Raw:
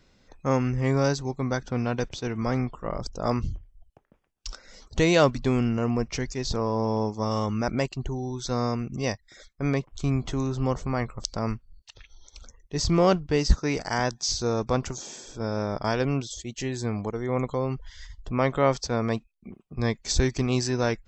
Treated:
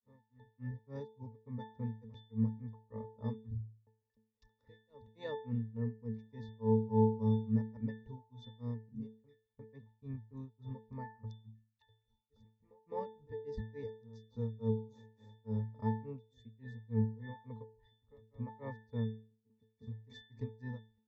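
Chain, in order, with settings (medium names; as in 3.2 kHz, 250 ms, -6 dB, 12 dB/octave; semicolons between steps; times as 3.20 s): on a send: reverse echo 368 ms -22 dB; on the sum: granulator 237 ms, grains 3.5 per s, pitch spread up and down by 0 st; pitch-class resonator A, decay 0.41 s; trim +5 dB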